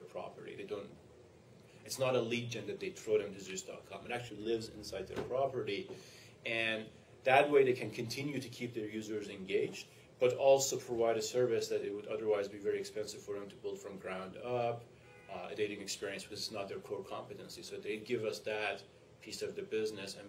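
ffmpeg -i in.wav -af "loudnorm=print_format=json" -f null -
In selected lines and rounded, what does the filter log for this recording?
"input_i" : "-37.4",
"input_tp" : "-14.0",
"input_lra" : "6.9",
"input_thresh" : "-47.9",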